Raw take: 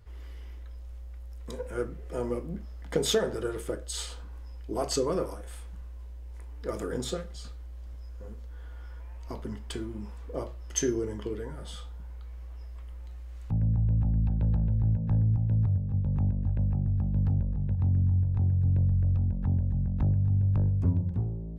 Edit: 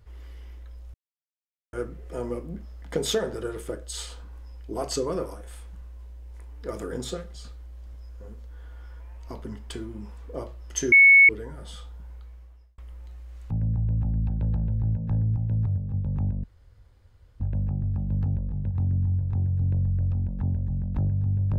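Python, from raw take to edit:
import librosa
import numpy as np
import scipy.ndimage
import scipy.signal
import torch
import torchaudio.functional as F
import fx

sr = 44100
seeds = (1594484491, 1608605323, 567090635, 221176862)

y = fx.edit(x, sr, fx.silence(start_s=0.94, length_s=0.79),
    fx.bleep(start_s=10.92, length_s=0.37, hz=2210.0, db=-10.0),
    fx.fade_out_span(start_s=12.15, length_s=0.63),
    fx.insert_room_tone(at_s=16.44, length_s=0.96), tone=tone)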